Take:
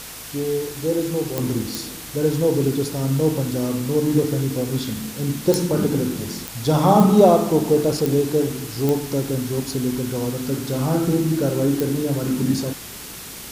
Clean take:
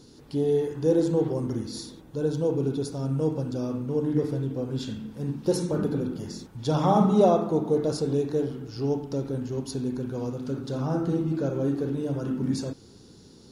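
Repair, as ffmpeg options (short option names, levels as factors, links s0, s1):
-af "adeclick=t=4,bandreject=f=53.5:t=h:w=4,bandreject=f=107:t=h:w=4,bandreject=f=160.5:t=h:w=4,afwtdn=0.018,asetnsamples=n=441:p=0,asendcmd='1.38 volume volume -6.5dB',volume=1"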